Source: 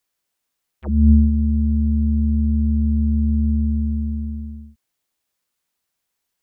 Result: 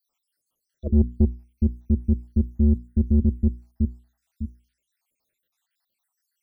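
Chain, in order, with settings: random holes in the spectrogram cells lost 78%; hum notches 60/120/180/240/300/360/420 Hz; saturation -14 dBFS, distortion -15 dB; trim +4.5 dB

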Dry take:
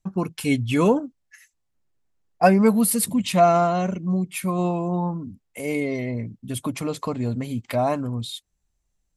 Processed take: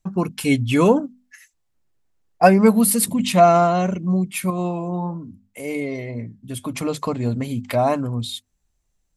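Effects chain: hum notches 50/100/150/200/250 Hz; 4.50–6.73 s: flange 1.2 Hz, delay 4.8 ms, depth 2.9 ms, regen -86%; trim +3.5 dB

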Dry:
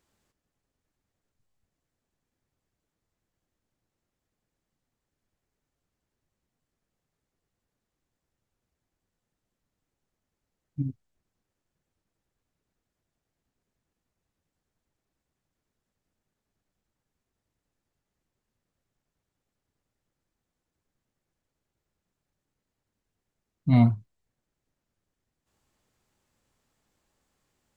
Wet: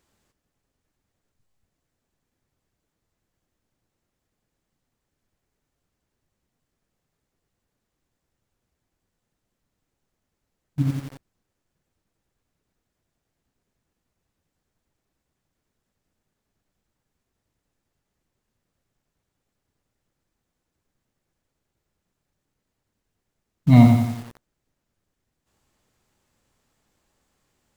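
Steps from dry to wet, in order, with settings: in parallel at -10 dB: bit crusher 6-bit; on the sum: bit-crushed delay 88 ms, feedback 55%, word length 7-bit, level -5 dB; trim +4.5 dB

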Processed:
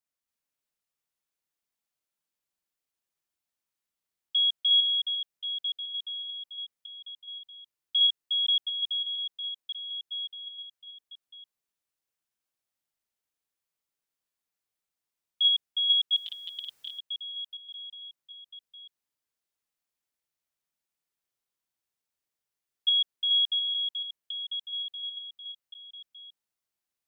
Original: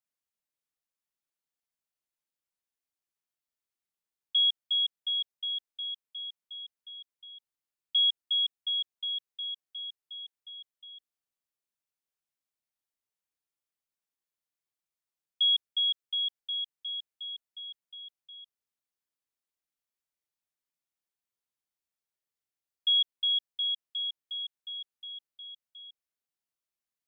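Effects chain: chunks repeated in reverse 286 ms, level 0 dB; 16.16–16.99 s: spectrum-flattening compressor 10:1

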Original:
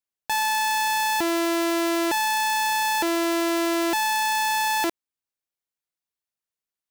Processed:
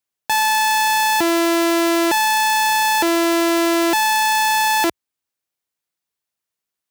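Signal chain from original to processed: high-pass 58 Hz 24 dB/octave; trim +6.5 dB

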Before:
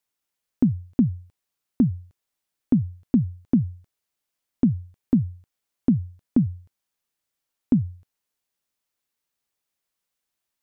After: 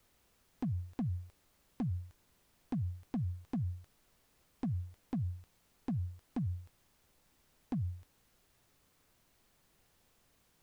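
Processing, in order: peaking EQ 180 Hz -14.5 dB 2.4 oct; hard clipper -27.5 dBFS, distortion -10 dB; peak limiter -37.5 dBFS, peak gain reduction 10 dB; added noise pink -79 dBFS; trim +6.5 dB

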